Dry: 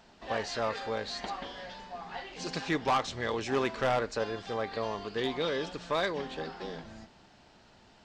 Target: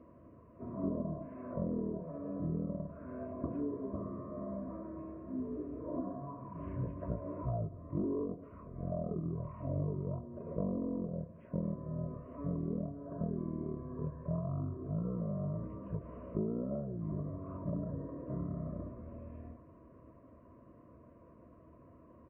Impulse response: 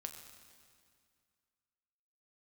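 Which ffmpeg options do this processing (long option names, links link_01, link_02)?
-filter_complex "[0:a]highpass=190,aemphasis=mode=reproduction:type=50kf,acrossover=split=2800[link_01][link_02];[link_02]acompressor=threshold=-59dB:ratio=4:attack=1:release=60[link_03];[link_01][link_03]amix=inputs=2:normalize=0,highshelf=frequency=3300:width_type=q:width=3:gain=-7.5,acompressor=threshold=-36dB:ratio=6,asetrate=15920,aresample=44100,asuperstop=centerf=820:order=12:qfactor=3.2,asplit=2[link_04][link_05];[link_05]adelay=105,lowpass=frequency=3100:poles=1,volume=-23dB,asplit=2[link_06][link_07];[link_07]adelay=105,lowpass=frequency=3100:poles=1,volume=0.52,asplit=2[link_08][link_09];[link_09]adelay=105,lowpass=frequency=3100:poles=1,volume=0.52[link_10];[link_06][link_08][link_10]amix=inputs=3:normalize=0[link_11];[link_04][link_11]amix=inputs=2:normalize=0,volume=3dB" -ar 16000 -c:a libmp3lame -b:a 24k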